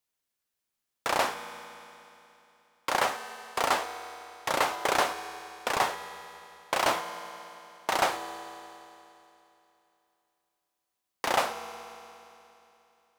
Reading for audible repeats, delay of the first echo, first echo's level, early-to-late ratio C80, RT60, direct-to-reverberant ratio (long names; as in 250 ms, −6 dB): no echo audible, no echo audible, no echo audible, 10.5 dB, 3.0 s, 9.0 dB